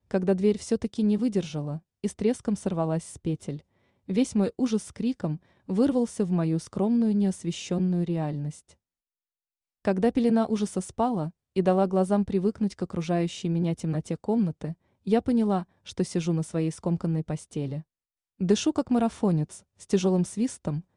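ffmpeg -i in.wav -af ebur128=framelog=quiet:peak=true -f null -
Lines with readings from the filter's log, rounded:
Integrated loudness:
  I:         -27.1 LUFS
  Threshold: -37.4 LUFS
Loudness range:
  LRA:         3.0 LU
  Threshold: -47.7 LUFS
  LRA low:   -29.2 LUFS
  LRA high:  -26.2 LUFS
True peak:
  Peak:      -10.7 dBFS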